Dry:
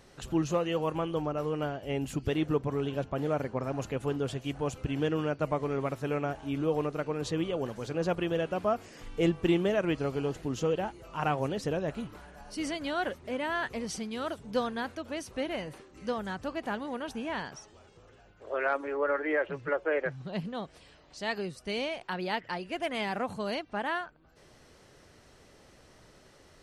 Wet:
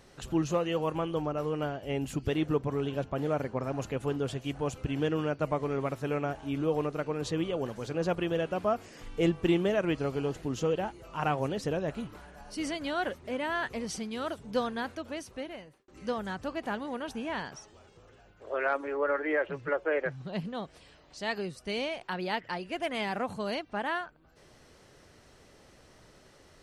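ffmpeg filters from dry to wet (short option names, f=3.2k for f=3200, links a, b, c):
-filter_complex "[0:a]asplit=2[a][b];[a]atrim=end=15.88,asetpts=PTS-STARTPTS,afade=t=out:st=15.01:d=0.87[c];[b]atrim=start=15.88,asetpts=PTS-STARTPTS,afade=t=in:d=0.004:c=hsin[d];[c][d]concat=n=2:v=0:a=1"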